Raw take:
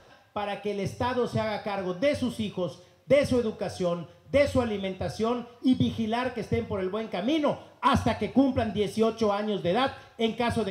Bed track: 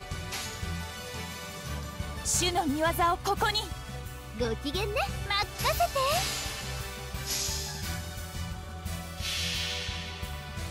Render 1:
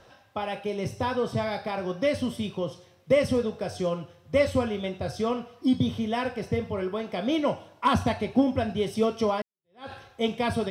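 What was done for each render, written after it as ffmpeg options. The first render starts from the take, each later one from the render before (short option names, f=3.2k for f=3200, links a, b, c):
-filter_complex "[0:a]asplit=2[a][b];[a]atrim=end=9.42,asetpts=PTS-STARTPTS,afade=t=out:st=9.416:d=0.004:c=hsin[c];[b]atrim=start=9.42,asetpts=PTS-STARTPTS,afade=t=in:d=0.5:c=exp[d];[c][d]concat=n=2:v=0:a=1"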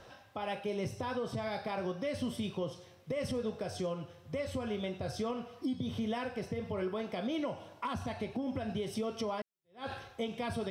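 -af "acompressor=threshold=-24dB:ratio=6,alimiter=level_in=3dB:limit=-24dB:level=0:latency=1:release=252,volume=-3dB"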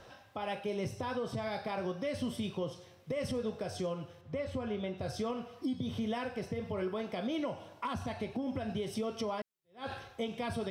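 -filter_complex "[0:a]asettb=1/sr,asplit=3[a][b][c];[a]atrim=end=4.214[d];[b]atrim=start=4.21:end=4.98,asetpts=PTS-STARTPTS,afade=t=in:d=0.004:c=qsin,afade=t=out:st=0.766:d=0.004:c=qsin,lowpass=f=2.7k:p=1[e];[c]atrim=start=4.976[f];[d][e]acrossfade=d=0.004:c1=hsin:c2=qsin[g];[g][f]acrossfade=d=0.004:c1=qsin:c2=hsin"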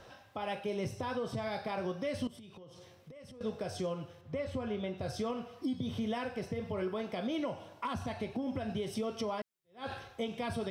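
-filter_complex "[0:a]asettb=1/sr,asplit=3[a][b][c];[a]atrim=end=2.274[d];[b]atrim=start=2.27:end=3.41,asetpts=PTS-STARTPTS,afade=t=in:d=0.004:c=qsin,afade=t=out:st=1.136:d=0.004:c=qsin,acompressor=threshold=-48dB:ratio=16:attack=3.2:release=140:knee=1:detection=peak[e];[c]atrim=start=3.406[f];[d][e]acrossfade=d=0.004:c1=hsin:c2=qsin[g];[g][f]acrossfade=d=0.004:c1=qsin:c2=hsin"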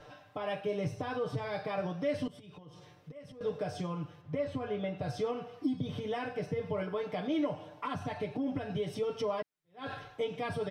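-af "highshelf=f=4.4k:g=-10,aecho=1:1:6.7:0.91"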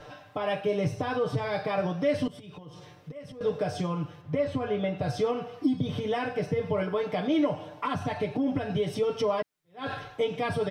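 -af "volume=6.5dB"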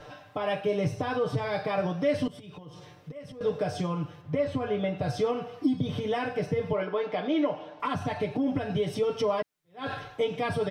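-filter_complex "[0:a]asettb=1/sr,asplit=3[a][b][c];[a]atrim=end=6.734[d];[b]atrim=start=6.73:end=7.8,asetpts=PTS-STARTPTS,afade=t=in:d=0.004:c=qsin,afade=t=out:st=1.066:d=0.004:c=qsin,highpass=250,lowpass=4.4k[e];[c]atrim=start=7.796[f];[d][e]acrossfade=d=0.004:c1=hsin:c2=qsin[g];[g][f]acrossfade=d=0.004:c1=qsin:c2=hsin"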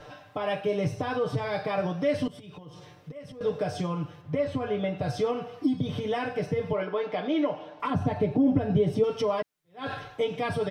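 -filter_complex "[0:a]asettb=1/sr,asplit=3[a][b][c];[a]atrim=end=7.904[d];[b]atrim=start=7.9:end=9.04,asetpts=PTS-STARTPTS,afade=t=in:d=0.004:c=qsin,afade=t=out:st=1.136:d=0.004:c=qsin,tiltshelf=f=850:g=7[e];[c]atrim=start=9.036[f];[d][e]acrossfade=d=0.004:c1=hsin:c2=qsin[g];[g][f]acrossfade=d=0.004:c1=qsin:c2=hsin"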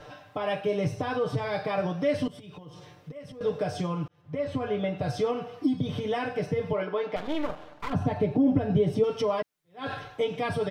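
-filter_complex "[0:a]asettb=1/sr,asplit=3[a][b][c];[a]atrim=end=7.164[d];[b]atrim=start=7.16:end=7.93,asetpts=PTS-STARTPTS,afade=t=in:d=0.004:c=qsin,afade=t=out:st=0.766:d=0.004:c=qsin,aeval=exprs='max(val(0),0)':c=same[e];[c]atrim=start=7.926[f];[d][e]acrossfade=d=0.004:c1=hsin:c2=qsin[g];[g][f]acrossfade=d=0.004:c1=qsin:c2=hsin,asplit=2[h][i];[h]atrim=end=4.08,asetpts=PTS-STARTPTS,afade=t=out:st=4.076:d=0.004:c=hsin[j];[i]atrim=start=4.08,asetpts=PTS-STARTPTS,afade=t=in:d=0.47[k];[j][k]concat=n=2:v=0:a=1"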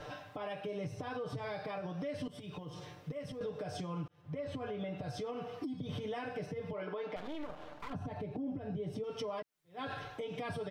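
-af "acompressor=threshold=-29dB:ratio=6,alimiter=level_in=7.5dB:limit=-24dB:level=0:latency=1:release=260,volume=-7.5dB"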